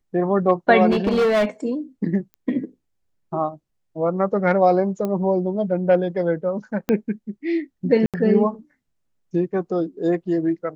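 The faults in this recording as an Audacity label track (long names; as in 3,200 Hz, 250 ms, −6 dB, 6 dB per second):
0.900000	1.450000	clipping −15 dBFS
2.340000	2.340000	click −28 dBFS
5.050000	5.050000	click −14 dBFS
6.890000	6.890000	click −9 dBFS
8.060000	8.140000	drop-out 77 ms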